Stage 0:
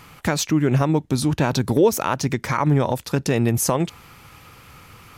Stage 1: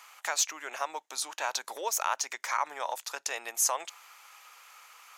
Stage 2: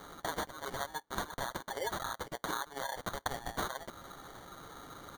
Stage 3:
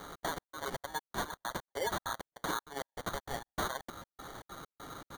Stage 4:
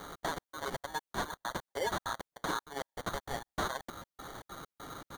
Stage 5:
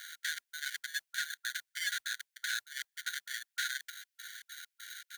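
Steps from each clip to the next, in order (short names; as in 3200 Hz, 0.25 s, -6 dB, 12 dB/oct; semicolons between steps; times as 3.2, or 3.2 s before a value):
HPF 720 Hz 24 dB/oct; bell 6700 Hz +7.5 dB 0.39 oct; gain -6 dB
comb 7.4 ms, depth 86%; compressor 12:1, threshold -35 dBFS, peak gain reduction 16 dB; sample-and-hold 17×; gain +1.5 dB
hard clip -31.5 dBFS, distortion -13 dB; step gate "xx.xx..x" 197 bpm -60 dB; gain +3 dB
slew limiter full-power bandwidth 150 Hz; gain +1 dB
half-wave gain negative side -7 dB; brick-wall FIR high-pass 1400 Hz; modulation noise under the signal 33 dB; gain +8 dB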